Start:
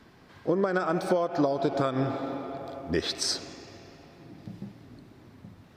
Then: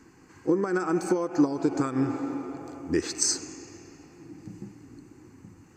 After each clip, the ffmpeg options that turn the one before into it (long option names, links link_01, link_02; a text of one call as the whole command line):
ffmpeg -i in.wav -af "superequalizer=6b=2.24:8b=0.316:13b=0.251:15b=3.98,volume=-1.5dB" out.wav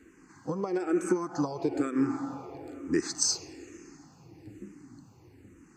ffmpeg -i in.wav -filter_complex "[0:a]asplit=2[link_01][link_02];[link_02]afreqshift=-1.1[link_03];[link_01][link_03]amix=inputs=2:normalize=1" out.wav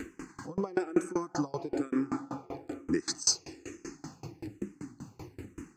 ffmpeg -i in.wav -af "acompressor=mode=upward:threshold=-34dB:ratio=2.5,aeval=exprs='val(0)*pow(10,-27*if(lt(mod(5.2*n/s,1),2*abs(5.2)/1000),1-mod(5.2*n/s,1)/(2*abs(5.2)/1000),(mod(5.2*n/s,1)-2*abs(5.2)/1000)/(1-2*abs(5.2)/1000))/20)':channel_layout=same,volume=6.5dB" out.wav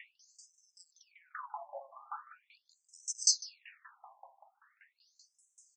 ffmpeg -i in.wav -af "aecho=1:1:151|302|453:0.119|0.0416|0.0146,afftfilt=real='re*between(b*sr/1024,770*pow(7500/770,0.5+0.5*sin(2*PI*0.41*pts/sr))/1.41,770*pow(7500/770,0.5+0.5*sin(2*PI*0.41*pts/sr))*1.41)':imag='im*between(b*sr/1024,770*pow(7500/770,0.5+0.5*sin(2*PI*0.41*pts/sr))/1.41,770*pow(7500/770,0.5+0.5*sin(2*PI*0.41*pts/sr))*1.41)':win_size=1024:overlap=0.75" out.wav